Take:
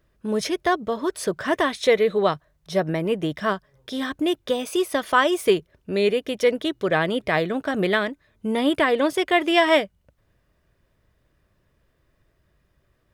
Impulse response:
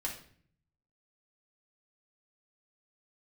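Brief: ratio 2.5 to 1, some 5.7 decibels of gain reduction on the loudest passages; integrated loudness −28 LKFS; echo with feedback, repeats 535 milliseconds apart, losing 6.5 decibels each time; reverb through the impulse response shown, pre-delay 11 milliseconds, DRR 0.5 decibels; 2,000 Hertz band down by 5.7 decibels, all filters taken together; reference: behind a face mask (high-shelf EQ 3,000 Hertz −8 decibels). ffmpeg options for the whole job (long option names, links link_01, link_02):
-filter_complex "[0:a]equalizer=frequency=2000:width_type=o:gain=-4.5,acompressor=threshold=-22dB:ratio=2.5,aecho=1:1:535|1070|1605|2140|2675|3210:0.473|0.222|0.105|0.0491|0.0231|0.0109,asplit=2[link_01][link_02];[1:a]atrim=start_sample=2205,adelay=11[link_03];[link_02][link_03]afir=irnorm=-1:irlink=0,volume=-2dB[link_04];[link_01][link_04]amix=inputs=2:normalize=0,highshelf=frequency=3000:gain=-8,volume=-4dB"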